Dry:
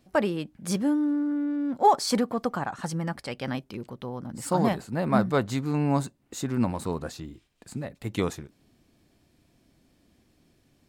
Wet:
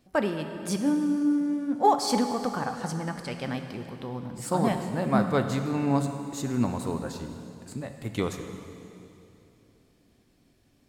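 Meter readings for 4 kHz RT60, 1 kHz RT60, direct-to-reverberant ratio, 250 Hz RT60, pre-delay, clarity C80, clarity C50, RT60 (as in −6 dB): 2.7 s, 2.7 s, 6.0 dB, 3.0 s, 3 ms, 8.0 dB, 7.0 dB, 2.8 s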